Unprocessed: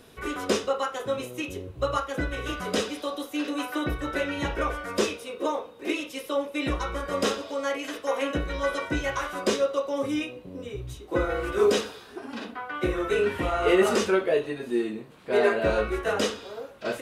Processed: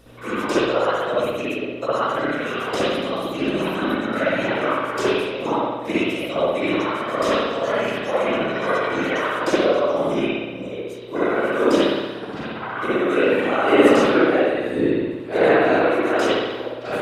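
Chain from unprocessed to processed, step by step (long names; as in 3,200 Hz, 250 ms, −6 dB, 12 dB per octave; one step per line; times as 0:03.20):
linear-phase brick-wall high-pass 220 Hz
random phases in short frames
mains hum 60 Hz, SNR 24 dB
spring reverb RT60 1.2 s, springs 59 ms, chirp 35 ms, DRR −9 dB
level −2 dB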